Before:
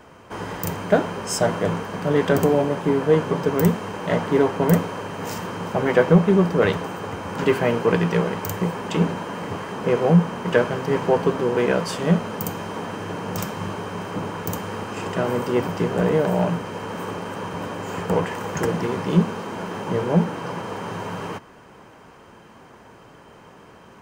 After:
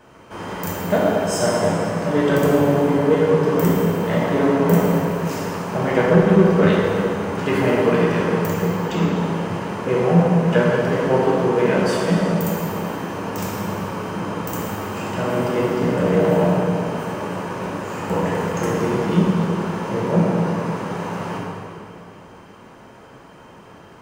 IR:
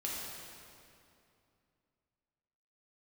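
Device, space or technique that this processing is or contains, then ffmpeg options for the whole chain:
stairwell: -filter_complex "[0:a]asettb=1/sr,asplit=3[a][b][c];[a]atrim=end=8.474[d];[b]atrim=start=8.47:end=9.16,asetpts=PTS-STARTPTS,afade=t=in:d=0.004:c=qsin,afade=t=out:st=0.686:d=0.004:c=qsin,lowpass=f=7.4k:w=0.5412,lowpass=f=7.4k:w=1.3066[e];[c]atrim=start=9.156[f];[d][e]acrossfade=d=0.004:c1=hsin:c2=qsin[g];[g][f]acrossfade=d=0.004:c1=qsin:c2=hsin[h];[1:a]atrim=start_sample=2205[i];[h][i]afir=irnorm=-1:irlink=0"

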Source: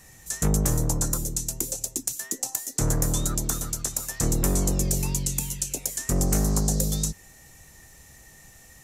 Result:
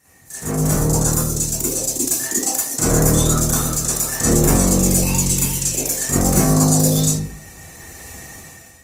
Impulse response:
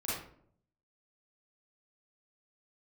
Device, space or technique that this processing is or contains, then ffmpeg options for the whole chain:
far-field microphone of a smart speaker: -filter_complex "[1:a]atrim=start_sample=2205[a];[0:a][a]afir=irnorm=-1:irlink=0,highpass=f=150:p=1,dynaudnorm=f=270:g=5:m=15dB,volume=-1dB" -ar 48000 -c:a libopus -b:a 24k

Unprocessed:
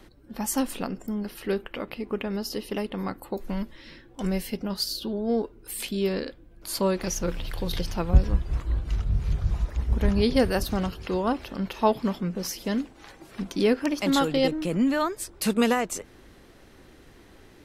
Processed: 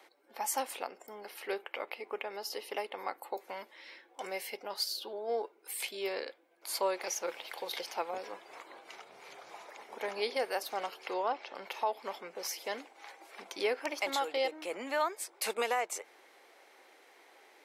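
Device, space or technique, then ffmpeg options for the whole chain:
laptop speaker: -filter_complex "[0:a]highpass=f=440:w=0.5412,highpass=f=440:w=1.3066,equalizer=f=820:t=o:w=0.46:g=6.5,equalizer=f=2.2k:t=o:w=0.22:g=8.5,alimiter=limit=-16dB:level=0:latency=1:release=308,asplit=3[a][b][c];[a]afade=t=out:st=11.13:d=0.02[d];[b]lowpass=f=6.4k:w=0.5412,lowpass=f=6.4k:w=1.3066,afade=t=in:st=11.13:d=0.02,afade=t=out:st=11.54:d=0.02[e];[c]afade=t=in:st=11.54:d=0.02[f];[d][e][f]amix=inputs=3:normalize=0,volume=-5dB"

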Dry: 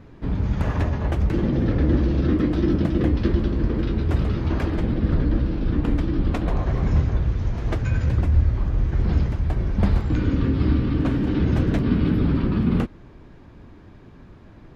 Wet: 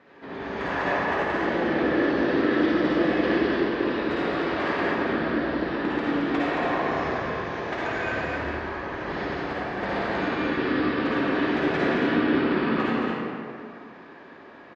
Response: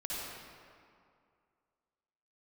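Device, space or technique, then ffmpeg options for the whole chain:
station announcement: -filter_complex "[0:a]highpass=480,lowpass=4.2k,equalizer=f=1.8k:t=o:w=0.27:g=6,aecho=1:1:186.6|221.6:0.316|0.562[a];[1:a]atrim=start_sample=2205[b];[a][b]afir=irnorm=-1:irlink=0,volume=4dB"

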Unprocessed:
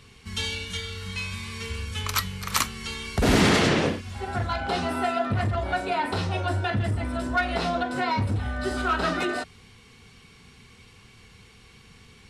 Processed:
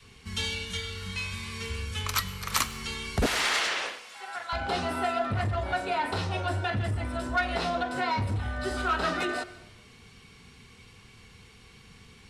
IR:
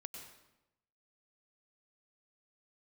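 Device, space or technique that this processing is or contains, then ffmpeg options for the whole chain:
saturated reverb return: -filter_complex "[0:a]adynamicequalizer=threshold=0.0126:dfrequency=200:dqfactor=0.74:tfrequency=200:tqfactor=0.74:attack=5:release=100:ratio=0.375:range=2:mode=cutabove:tftype=bell,asettb=1/sr,asplit=3[a][b][c];[a]atrim=end=3.264[d];[b]atrim=start=3.26:end=4.53,asetpts=PTS-STARTPTS,afade=t=in:d=0.004:c=qsin,afade=t=out:st=1.266:d=0.004:c=qsin,highpass=1k[e];[c]atrim=start=4.526[f];[d][e]acrossfade=d=0.004:c1=hsin:c2=qsin[g];[g][f]acrossfade=d=0.004:c1=qsin:c2=hsin,asplit=2[h][i];[1:a]atrim=start_sample=2205[j];[i][j]afir=irnorm=-1:irlink=0,asoftclip=type=tanh:threshold=-30dB,volume=-4.5dB[k];[h][k]amix=inputs=2:normalize=0,volume=-3.5dB"

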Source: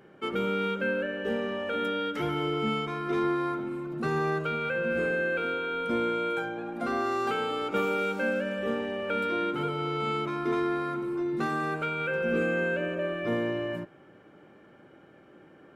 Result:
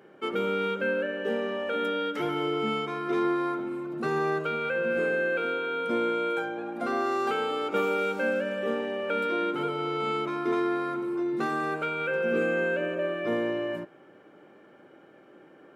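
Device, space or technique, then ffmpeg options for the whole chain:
filter by subtraction: -filter_complex "[0:a]asplit=2[a][b];[b]lowpass=400,volume=-1[c];[a][c]amix=inputs=2:normalize=0"

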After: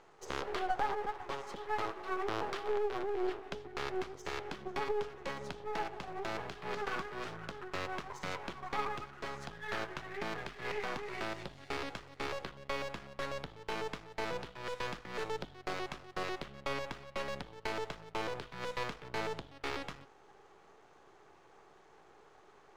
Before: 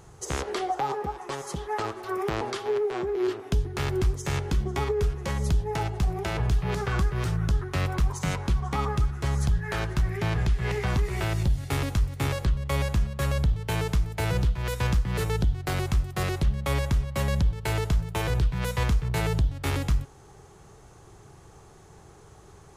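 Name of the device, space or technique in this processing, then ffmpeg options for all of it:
crystal radio: -af "highpass=390,lowpass=3.4k,aeval=exprs='if(lt(val(0),0),0.251*val(0),val(0))':c=same,volume=-1.5dB"

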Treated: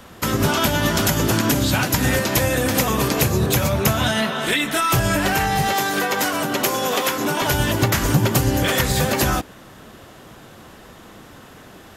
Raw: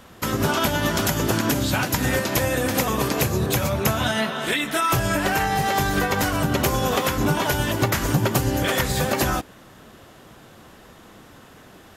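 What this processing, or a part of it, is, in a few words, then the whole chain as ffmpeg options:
one-band saturation: -filter_complex "[0:a]acrossover=split=250|2200[a][b][c];[b]asoftclip=type=tanh:threshold=-21dB[d];[a][d][c]amix=inputs=3:normalize=0,asettb=1/sr,asplit=3[e][f][g];[e]atrim=end=5.734[h];[f]atrim=start=5.73:end=7.42,asetpts=PTS-STARTPTS,afade=t=in:d=0.004:c=qsin,afade=t=out:st=1.686:d=0.004:c=qsin,highpass=290[i];[g]atrim=start=7.416[j];[h][i]acrossfade=d=0.004:c1=hsin:c2=qsin[k];[k][j]acrossfade=d=0.004:c1=qsin:c2=hsin,volume=4dB"

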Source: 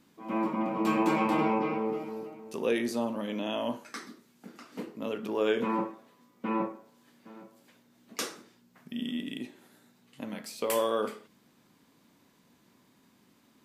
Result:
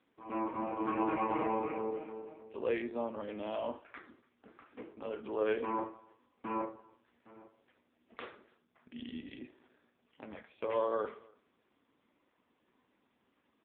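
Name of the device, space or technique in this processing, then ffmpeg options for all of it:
telephone: -filter_complex "[0:a]lowpass=f=5.8k:w=0.5412,lowpass=f=5.8k:w=1.3066,asettb=1/sr,asplit=3[a][b][c];[a]atrim=end=0.834[d];[b]atrim=start=0.83:end=1.79,asetpts=PTS-STARTPTS,afade=t=in:d=0.004:c=qsin,afade=t=out:st=0.956:d=0.004:c=qsin,acrossover=split=3000[e][f];[f]acompressor=threshold=-59dB:ratio=4:attack=1:release=60[g];[e][g]amix=inputs=2:normalize=0[h];[c]atrim=start=1.786[i];[d][h]acrossfade=d=0.004:c1=hsin:c2=qsin[j];[j][i]acrossfade=d=0.004:c1=qsin:c2=hsin,highpass=330,lowpass=3.1k,asplit=2[k][l];[l]adelay=285.7,volume=-26dB,highshelf=f=4k:g=-6.43[m];[k][m]amix=inputs=2:normalize=0,volume=-2.5dB" -ar 8000 -c:a libopencore_amrnb -b:a 5150

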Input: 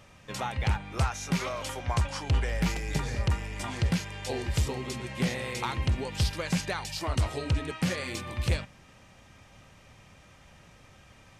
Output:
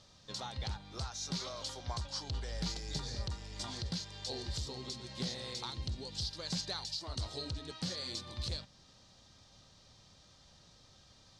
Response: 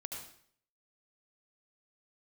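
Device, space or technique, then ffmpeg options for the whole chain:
over-bright horn tweeter: -filter_complex "[0:a]lowpass=5.4k,asettb=1/sr,asplit=3[a][b][c];[a]atrim=end=5.704[d];[b]atrim=start=5.7:end=6.22,asetpts=PTS-STARTPTS,afade=t=in:d=0.004:c=qsin,afade=t=out:st=0.516:d=0.004:c=qsin,equalizer=f=1.2k:w=0.56:g=-5[e];[c]atrim=start=6.216[f];[d][e]acrossfade=d=0.004:c1=hsin:c2=qsin[g];[g][f]acrossfade=d=0.004:c1=qsin:c2=hsin,highshelf=f=3.2k:t=q:w=3:g=9.5,alimiter=limit=-18dB:level=0:latency=1:release=321,volume=-8.5dB"

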